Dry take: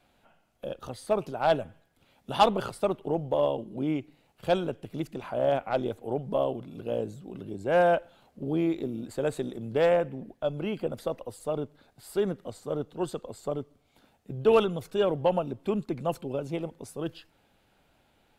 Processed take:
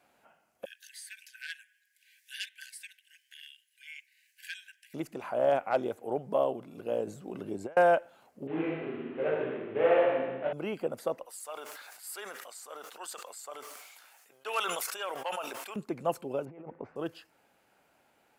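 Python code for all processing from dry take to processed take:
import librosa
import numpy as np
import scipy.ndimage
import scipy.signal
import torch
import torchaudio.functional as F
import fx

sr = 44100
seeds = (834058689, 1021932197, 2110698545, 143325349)

y = fx.chain(x, sr, fx.brickwall_highpass(low_hz=1500.0),
    fx.band_squash(depth_pct=40), at=(0.65, 4.94))
y = fx.chain(y, sr, fx.high_shelf(hz=9500.0, db=-4.5),
    fx.over_compress(threshold_db=-33.0, ratio=-0.5), at=(7.07, 7.77))
y = fx.chain(y, sr, fx.cvsd(bps=16000),
    fx.room_flutter(wall_m=6.5, rt60_s=1.3),
    fx.detune_double(cents=40), at=(8.47, 10.53))
y = fx.chain(y, sr, fx.highpass(hz=1300.0, slope=12),
    fx.high_shelf(hz=4800.0, db=4.5),
    fx.sustainer(db_per_s=29.0), at=(11.26, 15.76))
y = fx.chain(y, sr, fx.over_compress(threshold_db=-41.0, ratio=-1.0),
    fx.lowpass(hz=2100.0, slope=24), at=(16.45, 16.96))
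y = fx.highpass(y, sr, hz=490.0, slope=6)
y = fx.peak_eq(y, sr, hz=3600.0, db=-9.0, octaves=0.66)
y = F.gain(torch.from_numpy(y), 2.0).numpy()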